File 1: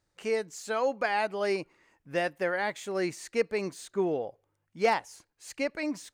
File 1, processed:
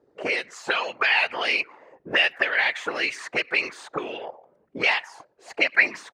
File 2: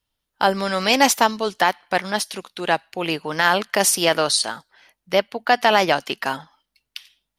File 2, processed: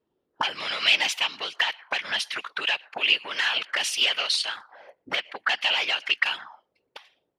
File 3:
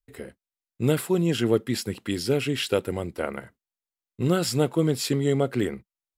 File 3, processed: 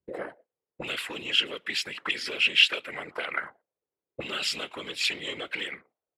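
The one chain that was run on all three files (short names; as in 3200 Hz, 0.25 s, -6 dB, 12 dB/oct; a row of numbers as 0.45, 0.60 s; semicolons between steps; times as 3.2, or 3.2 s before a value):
compressor 2:1, threshold -35 dBFS; speakerphone echo 0.12 s, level -29 dB; sine folder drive 9 dB, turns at -11.5 dBFS; whisperiser; auto-wah 400–2800 Hz, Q 3.3, up, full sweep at -18.5 dBFS; normalise peaks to -6 dBFS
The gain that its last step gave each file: +13.5, +5.5, +7.5 dB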